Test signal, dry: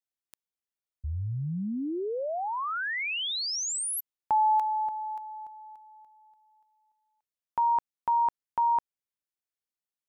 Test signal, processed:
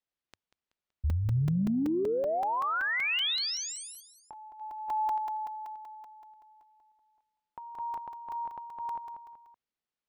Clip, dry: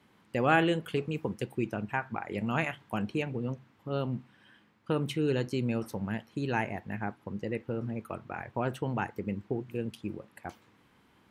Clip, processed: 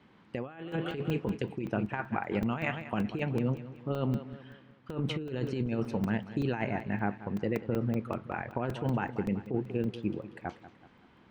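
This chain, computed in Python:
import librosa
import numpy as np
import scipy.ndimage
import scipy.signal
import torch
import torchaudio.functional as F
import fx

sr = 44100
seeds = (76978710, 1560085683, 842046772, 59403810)

y = scipy.signal.sosfilt(scipy.signal.butter(2, 4200.0, 'lowpass', fs=sr, output='sos'), x)
y = fx.peak_eq(y, sr, hz=95.0, db=-4.5, octaves=0.34)
y = fx.echo_feedback(y, sr, ms=189, feedback_pct=43, wet_db=-15.0)
y = fx.over_compress(y, sr, threshold_db=-32.0, ratio=-0.5)
y = fx.low_shelf(y, sr, hz=480.0, db=3.0)
y = fx.buffer_crackle(y, sr, first_s=0.72, period_s=0.19, block=128, kind='zero')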